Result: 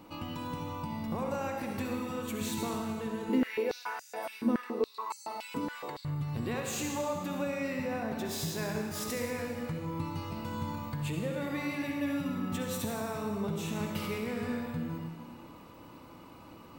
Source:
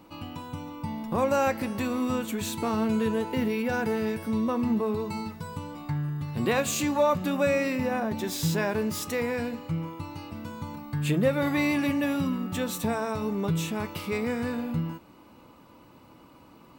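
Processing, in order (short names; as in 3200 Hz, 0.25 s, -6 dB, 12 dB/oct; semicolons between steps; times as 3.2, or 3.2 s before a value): compressor, threshold -34 dBFS, peak gain reduction 15 dB; reverb RT60 1.6 s, pre-delay 53 ms, DRR 1.5 dB; 3.29–6.05 stepped high-pass 7.1 Hz 260–6700 Hz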